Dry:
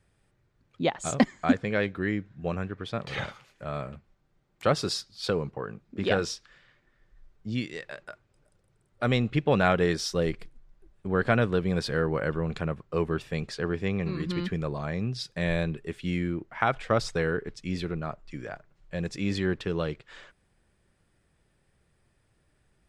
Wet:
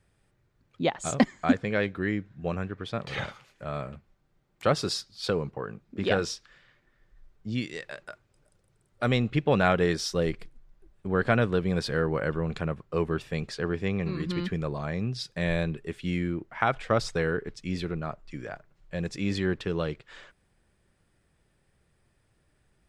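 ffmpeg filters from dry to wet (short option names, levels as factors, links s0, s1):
-filter_complex "[0:a]asettb=1/sr,asplit=3[s0][s1][s2];[s0]atrim=end=7.624[s3];[s1]atrim=start=7.62:end=9.09,asetpts=PTS-STARTPTS,afade=t=in:d=0.004:c=qsin,afade=t=out:st=1.466:d=0.004:c=qsin,equalizer=f=8700:w=0.44:g=3.5[s4];[s2]atrim=start=9.086[s5];[s3][s4]acrossfade=d=0.004:c1=hsin:c2=qsin[s6];[s6][s5]acrossfade=d=0.004:c1=qsin:c2=hsin"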